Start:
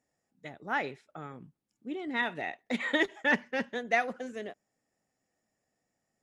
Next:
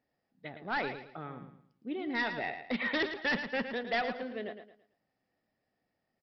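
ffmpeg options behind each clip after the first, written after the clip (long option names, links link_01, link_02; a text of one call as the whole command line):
ffmpeg -i in.wav -af "aresample=11025,asoftclip=type=hard:threshold=-27dB,aresample=44100,aecho=1:1:111|222|333|444:0.355|0.114|0.0363|0.0116" out.wav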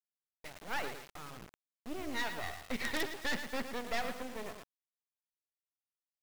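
ffmpeg -i in.wav -af "acrusher=bits=5:dc=4:mix=0:aa=0.000001" out.wav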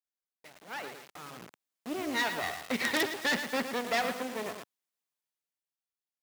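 ffmpeg -i in.wav -af "highpass=160,dynaudnorm=framelen=200:gausssize=13:maxgain=12dB,volume=-4.5dB" out.wav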